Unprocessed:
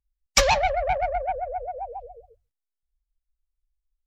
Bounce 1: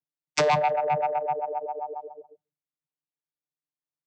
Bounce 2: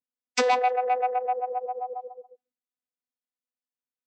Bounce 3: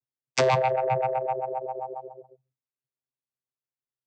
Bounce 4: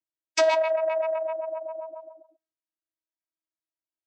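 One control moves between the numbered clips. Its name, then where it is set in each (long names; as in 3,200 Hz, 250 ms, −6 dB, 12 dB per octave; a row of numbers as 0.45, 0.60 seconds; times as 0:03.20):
channel vocoder, frequency: 150, 250, 130, 320 Hertz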